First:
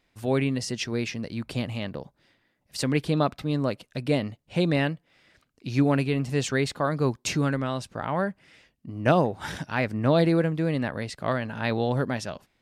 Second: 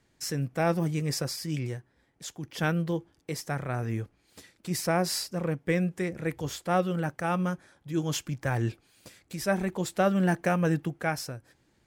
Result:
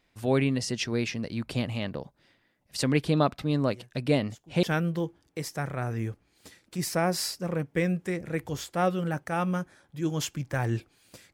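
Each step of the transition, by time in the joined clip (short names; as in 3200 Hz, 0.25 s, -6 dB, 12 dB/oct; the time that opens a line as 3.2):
first
3.67 add second from 1.59 s 0.96 s -14.5 dB
4.63 switch to second from 2.55 s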